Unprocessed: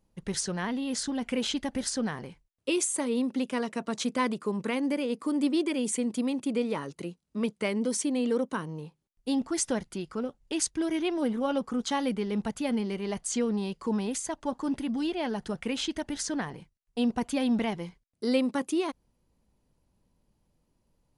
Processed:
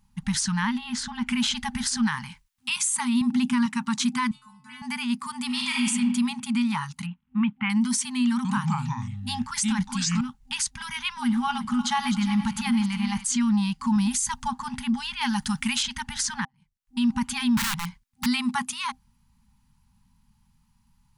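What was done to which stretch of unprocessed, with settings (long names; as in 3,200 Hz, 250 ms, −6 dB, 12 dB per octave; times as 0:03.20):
0:00.78–0:01.27: low-pass filter 2,700 Hz 6 dB per octave
0:02.07–0:02.70: tilt shelving filter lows −4.5 dB, about 680 Hz
0:03.21–0:03.66: low-shelf EQ 490 Hz +9 dB
0:04.31–0:04.82: stiff-string resonator 130 Hz, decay 0.82 s, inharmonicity 0.008
0:05.46–0:05.87: thrown reverb, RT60 1.3 s, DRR −2.5 dB
0:07.06–0:07.70: Butterworth low-pass 3,100 Hz 48 dB per octave
0:08.33–0:10.21: delay with pitch and tempo change per echo 117 ms, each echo −4 semitones, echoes 2
0:11.12–0:13.25: feedback delay that plays each chunk backwards 177 ms, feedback 63%, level −11.5 dB
0:13.96–0:14.48: bass and treble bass +7 dB, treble +7 dB
0:15.21–0:15.83: high-shelf EQ 4,000 Hz +11 dB
0:16.45–0:17.01: fade in quadratic
0:17.57–0:18.26: wrap-around overflow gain 30 dB
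whole clip: brick-wall band-stop 250–790 Hz; brickwall limiter −24.5 dBFS; level +8.5 dB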